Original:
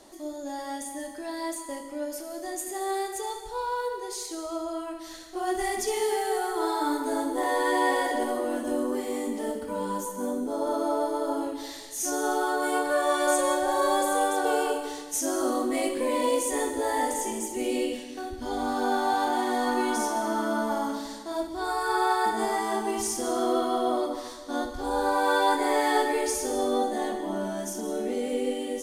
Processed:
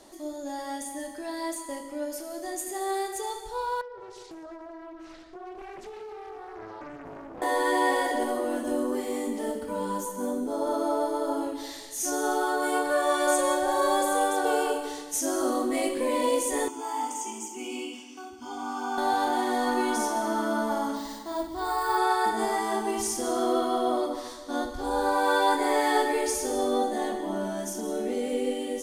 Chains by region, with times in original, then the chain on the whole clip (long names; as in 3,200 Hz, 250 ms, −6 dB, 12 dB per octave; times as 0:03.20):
0:03.81–0:07.42: head-to-tape spacing loss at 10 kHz 25 dB + downward compressor 4 to 1, threshold −40 dBFS + highs frequency-modulated by the lows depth 0.69 ms
0:16.68–0:18.98: Bessel high-pass filter 290 Hz + phaser with its sweep stopped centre 2,700 Hz, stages 8
0:20.96–0:21.98: comb filter 1 ms, depth 31% + bad sample-rate conversion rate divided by 2×, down filtered, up hold
whole clip: no processing